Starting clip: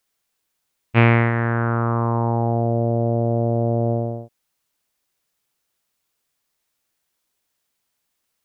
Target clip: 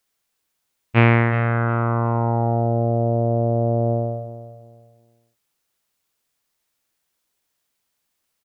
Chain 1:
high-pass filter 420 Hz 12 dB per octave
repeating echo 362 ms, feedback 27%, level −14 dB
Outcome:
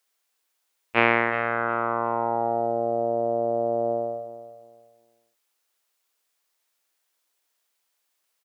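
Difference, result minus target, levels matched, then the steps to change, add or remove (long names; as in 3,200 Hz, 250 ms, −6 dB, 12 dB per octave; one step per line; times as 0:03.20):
500 Hz band +3.0 dB
remove: high-pass filter 420 Hz 12 dB per octave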